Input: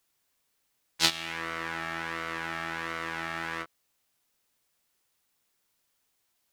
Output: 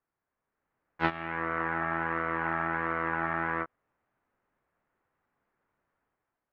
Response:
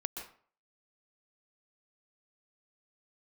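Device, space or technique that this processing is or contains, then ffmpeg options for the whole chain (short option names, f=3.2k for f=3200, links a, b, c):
action camera in a waterproof case: -af "lowpass=f=1.7k:w=0.5412,lowpass=f=1.7k:w=1.3066,dynaudnorm=f=180:g=7:m=9dB,volume=-3dB" -ar 48000 -c:a aac -b:a 64k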